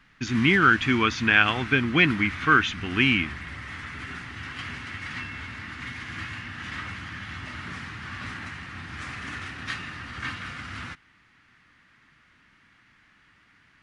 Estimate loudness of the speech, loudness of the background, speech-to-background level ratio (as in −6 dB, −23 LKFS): −21.0 LKFS, −35.5 LKFS, 14.5 dB